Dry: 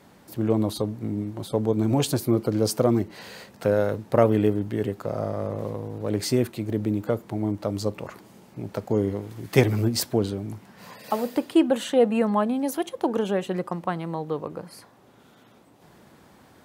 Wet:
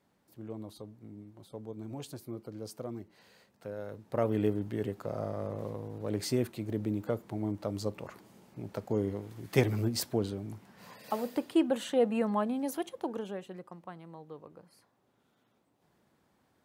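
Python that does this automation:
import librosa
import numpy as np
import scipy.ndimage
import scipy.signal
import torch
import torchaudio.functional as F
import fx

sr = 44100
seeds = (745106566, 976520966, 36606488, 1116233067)

y = fx.gain(x, sr, db=fx.line((3.74, -19.5), (4.44, -7.5), (12.78, -7.5), (13.62, -18.0)))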